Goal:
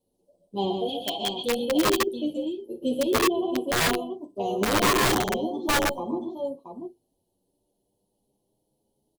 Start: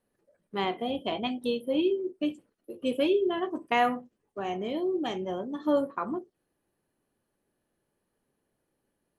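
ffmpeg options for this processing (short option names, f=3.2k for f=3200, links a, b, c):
-filter_complex "[0:a]asettb=1/sr,asplit=3[a][b][c];[a]atrim=end=0.884[d];[b]atrim=start=0.88:end=1.43,asetpts=PTS-STARTPTS,afade=t=in:d=0.004:c=qsin,afade=t=out:st=0.546:d=0.004:c=qsin,tiltshelf=f=920:g=-9[e];[c]atrim=start=1.426[f];[d][e]acrossfade=d=0.004:c1=hsin:c2=qsin[g];[g][f]acrossfade=d=0.004:c1=qsin:c2=hsin,asettb=1/sr,asplit=3[h][i][j];[h]atrim=end=4.614[k];[i]atrim=start=4.61:end=5.23,asetpts=PTS-STARTPTS,afade=t=in:d=0.004:c=qsin,afade=t=out:st=0.616:d=0.004:c=qsin,acontrast=53[l];[j]atrim=start=5.226[m];[k][l]acrossfade=d=0.004:c1=hsin:c2=qsin[n];[n][m]acrossfade=d=0.004:c1=qsin:c2=hsin,aecho=1:1:52|123|144|147|679:0.188|0.422|0.355|0.133|0.422,asettb=1/sr,asplit=3[o][p][q];[o]atrim=end=2.074[r];[p]atrim=start=2.07:end=3.13,asetpts=PTS-STARTPTS,afade=t=in:d=0.004:c=qsin,afade=t=out:st=1.056:d=0.004:c=qsin,acrossover=split=240[s][t];[t]acompressor=threshold=-26dB:ratio=6[u];[s][u]amix=inputs=2:normalize=0[v];[q]atrim=start=3.126[w];[r][v]acrossfade=d=0.004:c1=hsin:c2=qsin[x];[x][w]acrossfade=d=0.004:c1=qsin:c2=hsin,asuperstop=centerf=1700:order=8:qfactor=0.76,aeval=exprs='(mod(8.41*val(0)+1,2)-1)/8.41':c=same,asplit=2[y][z];[z]adelay=8.6,afreqshift=0.29[aa];[y][aa]amix=inputs=2:normalize=1,volume=5.5dB"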